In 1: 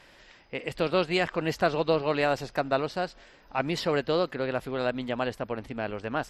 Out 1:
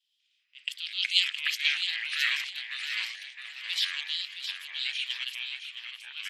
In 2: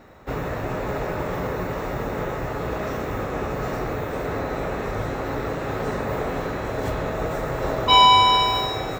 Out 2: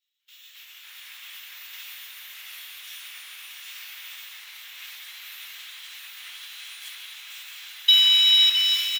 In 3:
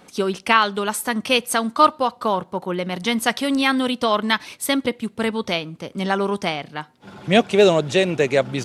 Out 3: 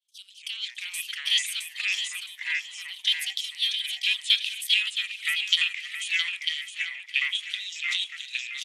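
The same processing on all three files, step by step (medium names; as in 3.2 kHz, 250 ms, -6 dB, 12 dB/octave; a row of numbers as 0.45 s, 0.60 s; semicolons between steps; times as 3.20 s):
dynamic bell 4 kHz, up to +4 dB, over -35 dBFS, Q 2; level held to a coarse grid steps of 10 dB; treble shelf 5.2 kHz +11.5 dB; compression 6:1, threshold -24 dBFS; ladder high-pass 3 kHz, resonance 75%; ever faster or slower copies 195 ms, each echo -4 st, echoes 2; on a send: feedback delay 667 ms, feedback 38%, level -5 dB; on the sum: three bands expanded up and down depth 100%; peak normalisation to -6 dBFS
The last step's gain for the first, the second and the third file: +10.0 dB, +6.0 dB, +4.0 dB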